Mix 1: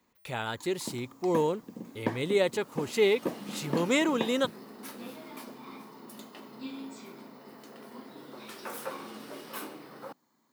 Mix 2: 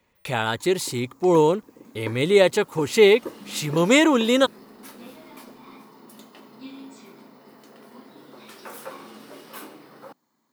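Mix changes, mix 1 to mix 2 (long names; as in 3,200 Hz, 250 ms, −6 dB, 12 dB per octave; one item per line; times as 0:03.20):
speech +9.5 dB
second sound: add phaser with its sweep stopped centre 710 Hz, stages 6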